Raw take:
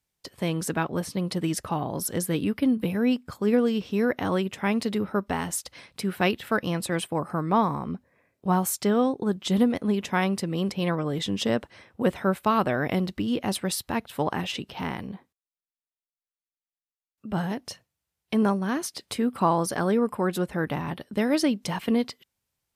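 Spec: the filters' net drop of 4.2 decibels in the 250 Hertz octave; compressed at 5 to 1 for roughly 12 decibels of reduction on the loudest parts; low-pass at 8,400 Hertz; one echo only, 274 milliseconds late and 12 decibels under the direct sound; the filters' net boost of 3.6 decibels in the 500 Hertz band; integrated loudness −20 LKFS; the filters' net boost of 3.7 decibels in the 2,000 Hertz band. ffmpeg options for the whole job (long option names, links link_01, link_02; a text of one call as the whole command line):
ffmpeg -i in.wav -af "lowpass=8400,equalizer=frequency=250:width_type=o:gain=-7,equalizer=frequency=500:width_type=o:gain=6,equalizer=frequency=2000:width_type=o:gain=4.5,acompressor=threshold=-29dB:ratio=5,aecho=1:1:274:0.251,volume=13.5dB" out.wav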